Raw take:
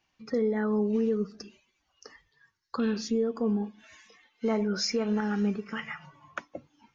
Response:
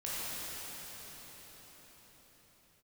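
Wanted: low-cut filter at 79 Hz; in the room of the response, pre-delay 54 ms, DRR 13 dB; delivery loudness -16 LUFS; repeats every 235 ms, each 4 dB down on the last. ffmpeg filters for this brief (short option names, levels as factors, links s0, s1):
-filter_complex "[0:a]highpass=79,aecho=1:1:235|470|705|940|1175|1410|1645|1880|2115:0.631|0.398|0.25|0.158|0.0994|0.0626|0.0394|0.0249|0.0157,asplit=2[s0][s1];[1:a]atrim=start_sample=2205,adelay=54[s2];[s1][s2]afir=irnorm=-1:irlink=0,volume=0.119[s3];[s0][s3]amix=inputs=2:normalize=0,volume=3.98"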